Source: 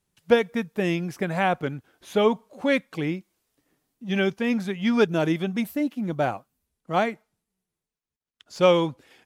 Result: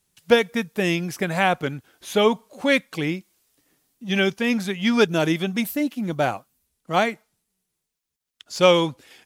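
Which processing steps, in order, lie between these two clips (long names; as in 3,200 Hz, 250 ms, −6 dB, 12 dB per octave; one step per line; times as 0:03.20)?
high-shelf EQ 2,400 Hz +9 dB
level +1.5 dB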